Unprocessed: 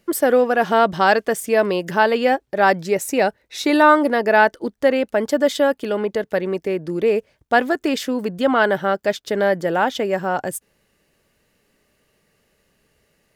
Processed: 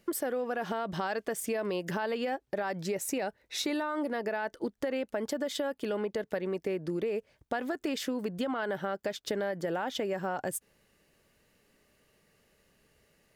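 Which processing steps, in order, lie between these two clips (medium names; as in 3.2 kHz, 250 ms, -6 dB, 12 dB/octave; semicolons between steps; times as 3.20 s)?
peak limiter -12.5 dBFS, peak gain reduction 10.5 dB; compression 6:1, threshold -26 dBFS, peak gain reduction 10 dB; trim -3.5 dB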